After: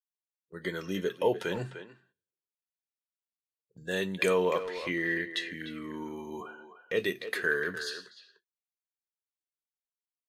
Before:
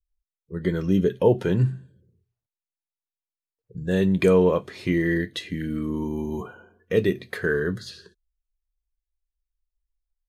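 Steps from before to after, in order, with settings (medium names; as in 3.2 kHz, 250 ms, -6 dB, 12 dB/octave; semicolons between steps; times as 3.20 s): high-pass 1.4 kHz 6 dB/octave; gate -54 dBFS, range -14 dB; 4.62–7.00 s: low-pass 3.6 kHz 6 dB/octave; speakerphone echo 300 ms, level -10 dB; trim +2 dB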